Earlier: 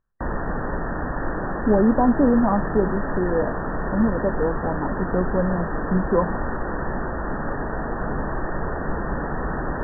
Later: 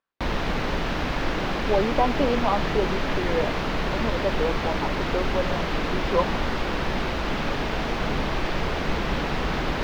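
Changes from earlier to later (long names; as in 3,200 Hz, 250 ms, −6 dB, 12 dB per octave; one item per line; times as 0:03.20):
speech: add high-pass filter 450 Hz 12 dB per octave
master: remove linear-phase brick-wall low-pass 1,900 Hz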